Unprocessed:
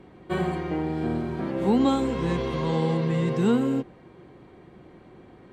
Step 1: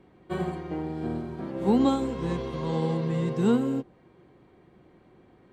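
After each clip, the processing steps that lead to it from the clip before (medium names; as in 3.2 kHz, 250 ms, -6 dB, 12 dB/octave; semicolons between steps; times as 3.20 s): dynamic bell 2.2 kHz, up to -4 dB, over -50 dBFS, Q 1.1; upward expansion 1.5:1, over -33 dBFS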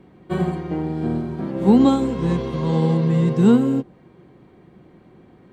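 peaking EQ 180 Hz +5.5 dB 1.3 oct; trim +5 dB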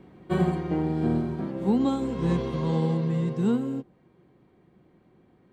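gain riding within 5 dB 0.5 s; trim -6.5 dB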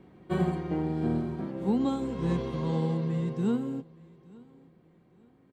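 feedback delay 868 ms, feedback 32%, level -24 dB; trim -3.5 dB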